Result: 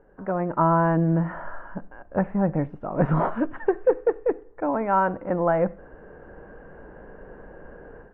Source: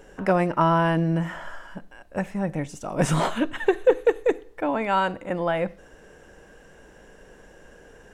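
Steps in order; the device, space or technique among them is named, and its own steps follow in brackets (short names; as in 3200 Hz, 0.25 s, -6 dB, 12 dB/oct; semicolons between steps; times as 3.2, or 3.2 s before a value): action camera in a waterproof case (LPF 1500 Hz 24 dB/oct; AGC gain up to 14 dB; gain -7.5 dB; AAC 48 kbps 24000 Hz)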